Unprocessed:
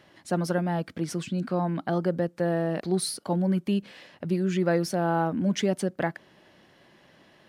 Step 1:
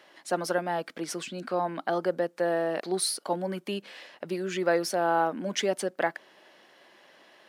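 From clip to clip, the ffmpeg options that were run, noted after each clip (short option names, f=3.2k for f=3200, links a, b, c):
-af "highpass=430,volume=2.5dB"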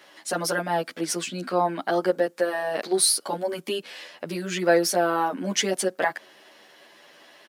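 -filter_complex "[0:a]highshelf=f=4.2k:g=7,asplit=2[a][b];[b]adelay=10.3,afreqshift=0.3[c];[a][c]amix=inputs=2:normalize=1,volume=6.5dB"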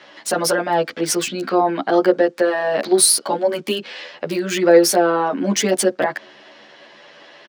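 -filter_complex "[0:a]acrossover=split=660|6100[a][b][c];[a]asplit=2[d][e];[e]adelay=14,volume=-3.5dB[f];[d][f]amix=inputs=2:normalize=0[g];[b]alimiter=limit=-22dB:level=0:latency=1:release=31[h];[c]acrusher=bits=6:mix=0:aa=0.000001[i];[g][h][i]amix=inputs=3:normalize=0,volume=7.5dB"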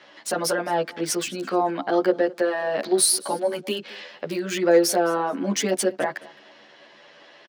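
-af "aecho=1:1:214|428:0.0841|0.0177,volume=-5.5dB"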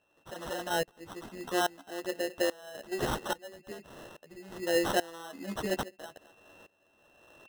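-af "acrusher=samples=19:mix=1:aa=0.000001,aeval=exprs='val(0)+0.00316*sin(2*PI*2700*n/s)':c=same,aeval=exprs='val(0)*pow(10,-21*if(lt(mod(-1.2*n/s,1),2*abs(-1.2)/1000),1-mod(-1.2*n/s,1)/(2*abs(-1.2)/1000),(mod(-1.2*n/s,1)-2*abs(-1.2)/1000)/(1-2*abs(-1.2)/1000))/20)':c=same,volume=-5dB"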